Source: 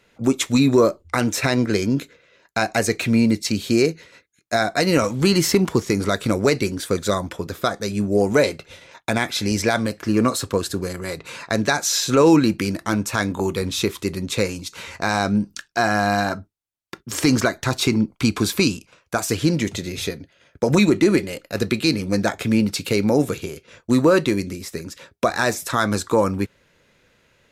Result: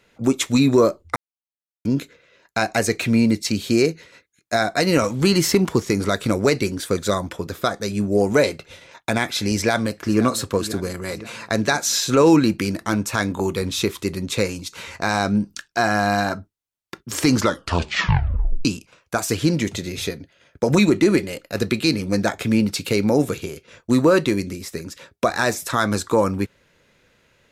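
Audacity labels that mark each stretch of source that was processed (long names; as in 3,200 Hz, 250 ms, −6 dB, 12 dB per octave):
1.160000	1.850000	silence
9.540000	10.230000	delay throw 520 ms, feedback 55%, level −15 dB
17.330000	17.330000	tape stop 1.32 s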